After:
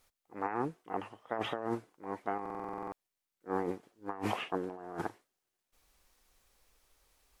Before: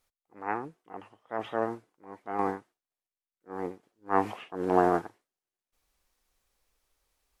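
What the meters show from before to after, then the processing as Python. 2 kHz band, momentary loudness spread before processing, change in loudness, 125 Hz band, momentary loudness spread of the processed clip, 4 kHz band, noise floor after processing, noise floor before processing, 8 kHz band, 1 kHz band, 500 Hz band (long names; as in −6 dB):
−4.5 dB, 22 LU, −7.5 dB, −3.0 dB, 8 LU, +5.5 dB, below −85 dBFS, below −85 dBFS, can't be measured, −7.0 dB, −7.0 dB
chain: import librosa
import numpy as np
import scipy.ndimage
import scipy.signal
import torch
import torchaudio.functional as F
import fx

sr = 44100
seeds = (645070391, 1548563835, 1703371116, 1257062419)

y = fx.over_compress(x, sr, threshold_db=-37.0, ratio=-1.0)
y = fx.buffer_glitch(y, sr, at_s=(2.41,), block=2048, repeats=10)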